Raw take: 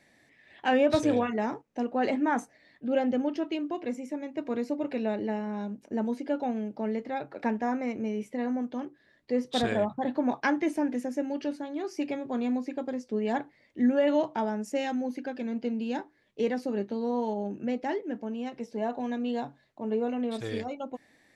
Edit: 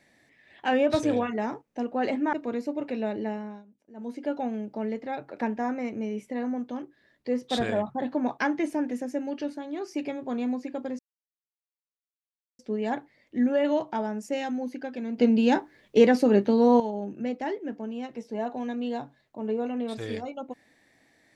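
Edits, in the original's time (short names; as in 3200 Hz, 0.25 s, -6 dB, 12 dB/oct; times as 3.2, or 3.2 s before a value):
2.33–4.36 cut
5.26–6.37 dip -19.5 dB, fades 0.40 s equal-power
13.02 insert silence 1.60 s
15.61–17.23 gain +10.5 dB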